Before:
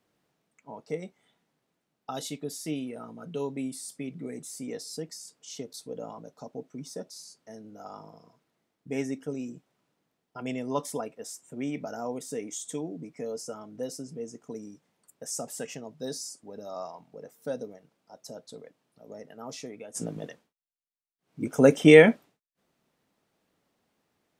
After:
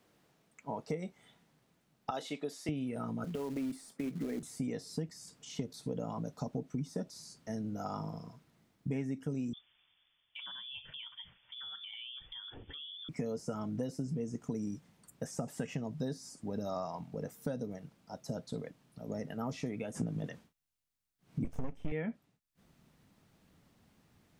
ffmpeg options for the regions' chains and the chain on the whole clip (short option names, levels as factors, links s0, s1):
-filter_complex "[0:a]asettb=1/sr,asplit=3[s0][s1][s2];[s0]atrim=end=2.104[s3];[s1]atrim=start=2.1:end=2.69,asetpts=PTS-STARTPTS,afade=t=in:d=0.004:c=qsin,afade=t=out:st=0.586:d=0.004:c=qsin,highpass=420,highshelf=f=10000:g=-12[s4];[s2]atrim=start=2.686[s5];[s3][s4]acrossfade=d=0.004:c1=hsin:c2=qsin[s6];[s6][s5]acrossfade=d=0.004:c1=qsin:c2=hsin,asettb=1/sr,asplit=3[s7][s8][s9];[s7]atrim=end=3.244[s10];[s8]atrim=start=3.24:end=4.43,asetpts=PTS-STARTPTS,afade=t=in:d=0.004:c=qsin,afade=t=out:st=1.186:d=0.004:c=qsin,acrossover=split=210 2400:gain=0.0794 1 0.141[s11][s12][s13];[s11][s12][s13]amix=inputs=3:normalize=0,acompressor=threshold=0.0158:ratio=16:attack=3.2:release=140:knee=1:detection=peak,acrusher=bits=4:mode=log:mix=0:aa=0.000001[s14];[s9]atrim=start=4.426[s15];[s10][s14]acrossfade=d=0.004:c1=hsin:c2=qsin[s16];[s16][s15]acrossfade=d=0.004:c1=qsin:c2=hsin,asettb=1/sr,asplit=3[s17][s18][s19];[s17]atrim=end=9.534[s20];[s18]atrim=start=9.53:end=13.09,asetpts=PTS-STARTPTS,afade=t=in:d=0.004:c=qsin,afade=t=out:st=3.556:d=0.004:c=qsin,highpass=180,lowpass=f=3100:t=q:w=0.5098,lowpass=f=3100:t=q:w=0.6013,lowpass=f=3100:t=q:w=0.9,lowpass=f=3100:t=q:w=2.563,afreqshift=-3700,acompressor=threshold=0.00562:ratio=6:attack=3.2:release=140:knee=1:detection=peak[s21];[s19]atrim=start=13.086[s22];[s20][s21]acrossfade=d=0.004:c1=hsin:c2=qsin[s23];[s23][s22]acrossfade=d=0.004:c1=qsin:c2=hsin,asettb=1/sr,asplit=3[s24][s25][s26];[s24]atrim=end=21.444[s27];[s25]atrim=start=21.44:end=21.92,asetpts=PTS-STARTPTS,afade=t=in:d=0.004:c=qsin,afade=t=out:st=0.476:d=0.004:c=qsin,asuperstop=centerf=1300:order=4:qfactor=1.8,aeval=exprs='max(val(0),0)':c=same[s28];[s26]atrim=start=21.916[s29];[s27][s28]acrossfade=d=0.004:c1=hsin:c2=qsin[s30];[s30][s29]acrossfade=d=0.004:c1=qsin:c2=hsin,acrossover=split=2700[s31][s32];[s32]acompressor=threshold=0.00178:ratio=4:attack=1:release=60[s33];[s31][s33]amix=inputs=2:normalize=0,asubboost=boost=4:cutoff=200,acompressor=threshold=0.0126:ratio=12,volume=1.88"